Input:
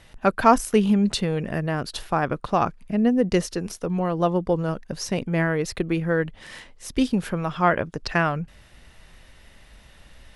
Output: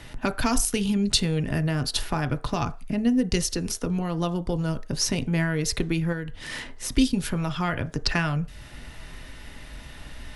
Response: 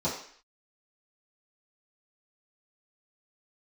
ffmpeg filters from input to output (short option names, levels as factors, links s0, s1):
-filter_complex "[0:a]acrossover=split=120|3000[s0][s1][s2];[s1]acompressor=threshold=0.0112:ratio=3[s3];[s0][s3][s2]amix=inputs=3:normalize=0,asplit=2[s4][s5];[1:a]atrim=start_sample=2205,asetrate=70560,aresample=44100,highshelf=f=3100:g=-11[s6];[s5][s6]afir=irnorm=-1:irlink=0,volume=0.211[s7];[s4][s7]amix=inputs=2:normalize=0,asettb=1/sr,asplit=3[s8][s9][s10];[s8]atrim=end=6.124[s11];[s9]atrim=start=6.12:end=6.92,asetpts=PTS-STARTPTS,afade=t=in:d=0.004:c=qsin,afade=t=out:st=0.796:d=0.004:c=qsin,acompressor=threshold=0.0178:ratio=6[s12];[s10]atrim=start=6.916[s13];[s11][s12]acrossfade=d=0.004:c1=hsin:c2=qsin[s14];[s14][s13]acrossfade=d=0.004:c1=qsin:c2=hsin,volume=2.37"